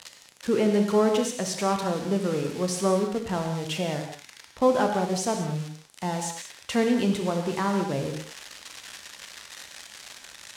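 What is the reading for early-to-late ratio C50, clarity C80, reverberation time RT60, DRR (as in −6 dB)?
5.5 dB, 7.0 dB, non-exponential decay, 4.0 dB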